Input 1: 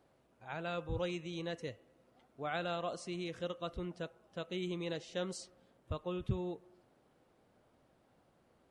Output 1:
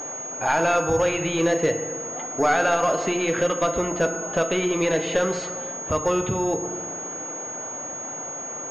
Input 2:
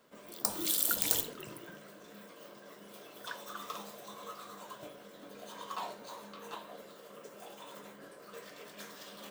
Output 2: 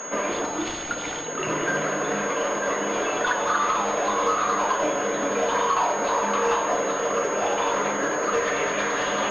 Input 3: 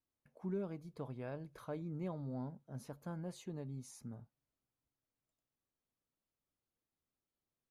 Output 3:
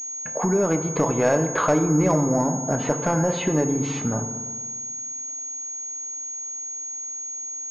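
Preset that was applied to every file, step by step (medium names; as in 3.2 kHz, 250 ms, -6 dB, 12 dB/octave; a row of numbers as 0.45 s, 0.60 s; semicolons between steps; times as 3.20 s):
compression 6:1, threshold -46 dBFS; overdrive pedal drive 25 dB, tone 2.6 kHz, clips at -24 dBFS; FDN reverb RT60 1.4 s, low-frequency decay 1.2×, high-frequency decay 0.45×, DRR 6.5 dB; class-D stage that switches slowly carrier 6.6 kHz; normalise loudness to -24 LUFS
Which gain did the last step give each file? +15.5 dB, +13.5 dB, +18.0 dB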